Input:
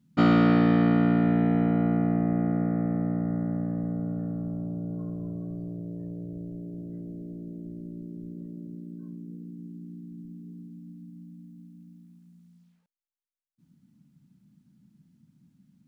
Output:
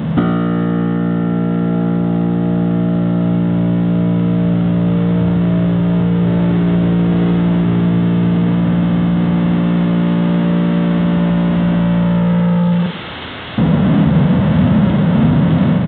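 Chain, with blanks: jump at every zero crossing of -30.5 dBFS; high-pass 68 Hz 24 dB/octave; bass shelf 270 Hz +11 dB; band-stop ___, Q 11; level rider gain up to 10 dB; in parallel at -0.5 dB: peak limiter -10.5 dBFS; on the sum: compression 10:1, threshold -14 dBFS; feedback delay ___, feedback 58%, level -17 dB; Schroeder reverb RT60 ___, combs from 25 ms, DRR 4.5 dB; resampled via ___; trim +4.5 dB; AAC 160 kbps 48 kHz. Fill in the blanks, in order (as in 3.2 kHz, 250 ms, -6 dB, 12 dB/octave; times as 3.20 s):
2.4 kHz, 61 ms, 0.63 s, 8 kHz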